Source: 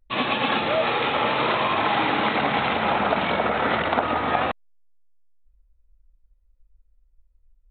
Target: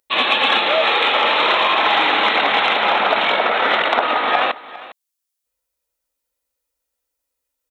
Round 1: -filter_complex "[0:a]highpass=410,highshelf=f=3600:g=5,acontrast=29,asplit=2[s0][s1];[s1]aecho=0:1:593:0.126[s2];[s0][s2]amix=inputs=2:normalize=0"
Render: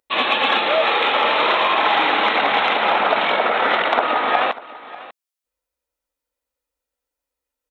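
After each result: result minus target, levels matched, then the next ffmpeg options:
echo 189 ms late; 8 kHz band -5.0 dB
-filter_complex "[0:a]highpass=410,highshelf=f=3600:g=5,acontrast=29,asplit=2[s0][s1];[s1]aecho=0:1:404:0.126[s2];[s0][s2]amix=inputs=2:normalize=0"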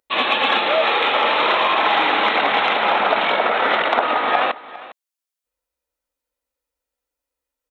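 8 kHz band -5.0 dB
-filter_complex "[0:a]highpass=410,highshelf=f=3600:g=13.5,acontrast=29,asplit=2[s0][s1];[s1]aecho=0:1:404:0.126[s2];[s0][s2]amix=inputs=2:normalize=0"

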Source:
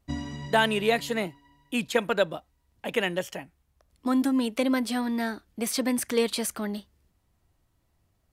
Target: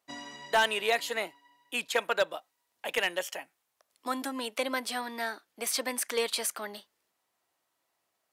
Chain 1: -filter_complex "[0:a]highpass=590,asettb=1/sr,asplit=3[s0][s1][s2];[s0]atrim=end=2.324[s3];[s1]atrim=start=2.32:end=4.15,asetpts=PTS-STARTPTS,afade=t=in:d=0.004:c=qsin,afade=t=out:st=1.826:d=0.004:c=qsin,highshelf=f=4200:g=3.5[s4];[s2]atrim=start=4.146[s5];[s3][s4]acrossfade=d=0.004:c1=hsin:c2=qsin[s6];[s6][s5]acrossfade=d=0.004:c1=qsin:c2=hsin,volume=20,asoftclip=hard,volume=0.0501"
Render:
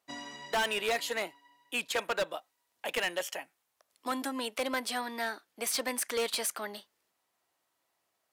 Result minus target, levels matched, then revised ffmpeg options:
overload inside the chain: distortion +10 dB
-filter_complex "[0:a]highpass=590,asettb=1/sr,asplit=3[s0][s1][s2];[s0]atrim=end=2.324[s3];[s1]atrim=start=2.32:end=4.15,asetpts=PTS-STARTPTS,afade=t=in:d=0.004:c=qsin,afade=t=out:st=1.826:d=0.004:c=qsin,highshelf=f=4200:g=3.5[s4];[s2]atrim=start=4.146[s5];[s3][s4]acrossfade=d=0.004:c1=hsin:c2=qsin[s6];[s6][s5]acrossfade=d=0.004:c1=qsin:c2=hsin,volume=8.41,asoftclip=hard,volume=0.119"

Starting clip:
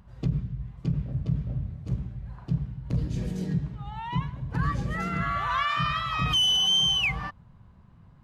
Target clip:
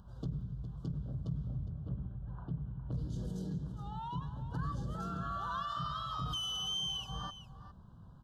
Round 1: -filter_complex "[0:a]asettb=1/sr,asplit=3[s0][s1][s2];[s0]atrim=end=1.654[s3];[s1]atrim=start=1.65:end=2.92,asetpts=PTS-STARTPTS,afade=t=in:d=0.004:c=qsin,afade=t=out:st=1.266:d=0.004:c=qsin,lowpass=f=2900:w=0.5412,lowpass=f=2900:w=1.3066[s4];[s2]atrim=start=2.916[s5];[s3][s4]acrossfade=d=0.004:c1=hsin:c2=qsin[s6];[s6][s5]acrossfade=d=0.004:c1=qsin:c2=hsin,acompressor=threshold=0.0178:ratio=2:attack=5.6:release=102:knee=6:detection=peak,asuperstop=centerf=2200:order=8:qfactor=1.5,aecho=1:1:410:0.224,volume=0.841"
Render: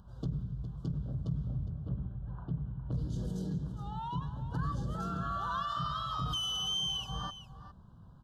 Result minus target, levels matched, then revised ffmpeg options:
compression: peak gain reduction -3 dB
-filter_complex "[0:a]asettb=1/sr,asplit=3[s0][s1][s2];[s0]atrim=end=1.654[s3];[s1]atrim=start=1.65:end=2.92,asetpts=PTS-STARTPTS,afade=t=in:d=0.004:c=qsin,afade=t=out:st=1.266:d=0.004:c=qsin,lowpass=f=2900:w=0.5412,lowpass=f=2900:w=1.3066[s4];[s2]atrim=start=2.916[s5];[s3][s4]acrossfade=d=0.004:c1=hsin:c2=qsin[s6];[s6][s5]acrossfade=d=0.004:c1=qsin:c2=hsin,acompressor=threshold=0.00891:ratio=2:attack=5.6:release=102:knee=6:detection=peak,asuperstop=centerf=2200:order=8:qfactor=1.5,aecho=1:1:410:0.224,volume=0.841"

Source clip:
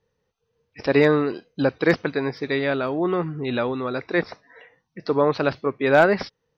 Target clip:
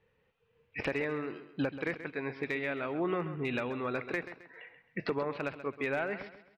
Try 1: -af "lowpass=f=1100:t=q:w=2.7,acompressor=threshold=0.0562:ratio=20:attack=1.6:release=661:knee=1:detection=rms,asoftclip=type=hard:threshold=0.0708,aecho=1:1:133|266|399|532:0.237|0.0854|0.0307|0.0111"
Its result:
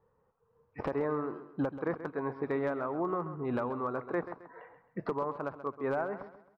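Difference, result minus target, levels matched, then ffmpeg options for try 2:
2 kHz band -7.5 dB
-af "lowpass=f=2500:t=q:w=2.7,acompressor=threshold=0.0562:ratio=20:attack=1.6:release=661:knee=1:detection=rms,asoftclip=type=hard:threshold=0.0708,aecho=1:1:133|266|399|532:0.237|0.0854|0.0307|0.0111"

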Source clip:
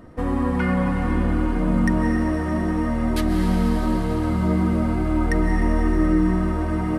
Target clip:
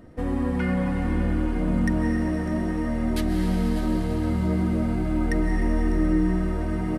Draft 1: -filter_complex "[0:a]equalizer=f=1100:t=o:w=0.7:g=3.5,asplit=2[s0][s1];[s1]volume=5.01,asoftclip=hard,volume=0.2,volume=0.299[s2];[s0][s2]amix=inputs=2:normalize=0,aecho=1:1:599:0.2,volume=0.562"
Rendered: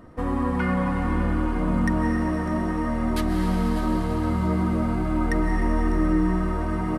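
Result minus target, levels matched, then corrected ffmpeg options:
1 kHz band +6.0 dB
-filter_complex "[0:a]equalizer=f=1100:t=o:w=0.7:g=-7,asplit=2[s0][s1];[s1]volume=5.01,asoftclip=hard,volume=0.2,volume=0.299[s2];[s0][s2]amix=inputs=2:normalize=0,aecho=1:1:599:0.2,volume=0.562"

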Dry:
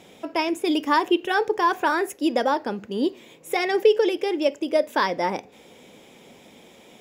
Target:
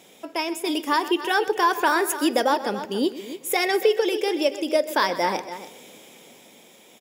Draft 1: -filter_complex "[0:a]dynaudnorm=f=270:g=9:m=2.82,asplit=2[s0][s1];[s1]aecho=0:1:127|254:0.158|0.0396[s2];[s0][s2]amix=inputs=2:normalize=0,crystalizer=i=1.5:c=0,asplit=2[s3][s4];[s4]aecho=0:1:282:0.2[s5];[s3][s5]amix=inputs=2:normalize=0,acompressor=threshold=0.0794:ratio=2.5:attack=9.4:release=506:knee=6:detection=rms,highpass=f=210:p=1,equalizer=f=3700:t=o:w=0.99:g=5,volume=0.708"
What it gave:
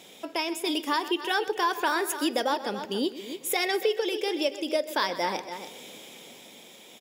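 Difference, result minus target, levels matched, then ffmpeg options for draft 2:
compression: peak gain reduction +6.5 dB; 4 kHz band +3.5 dB
-filter_complex "[0:a]dynaudnorm=f=270:g=9:m=2.82,asplit=2[s0][s1];[s1]aecho=0:1:127|254:0.158|0.0396[s2];[s0][s2]amix=inputs=2:normalize=0,crystalizer=i=1.5:c=0,asplit=2[s3][s4];[s4]aecho=0:1:282:0.2[s5];[s3][s5]amix=inputs=2:normalize=0,acompressor=threshold=0.282:ratio=2.5:attack=9.4:release=506:knee=6:detection=rms,highpass=f=210:p=1,volume=0.708"

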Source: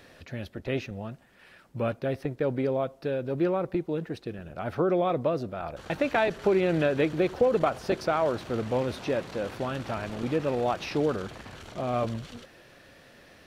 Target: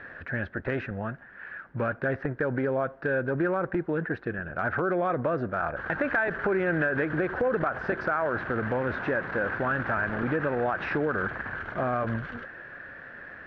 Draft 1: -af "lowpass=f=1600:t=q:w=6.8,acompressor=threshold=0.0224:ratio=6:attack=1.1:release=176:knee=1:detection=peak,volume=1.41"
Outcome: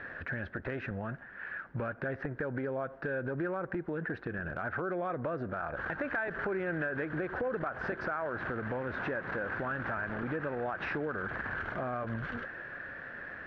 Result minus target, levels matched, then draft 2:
compression: peak gain reduction +8 dB
-af "lowpass=f=1600:t=q:w=6.8,acompressor=threshold=0.0668:ratio=6:attack=1.1:release=176:knee=1:detection=peak,volume=1.41"

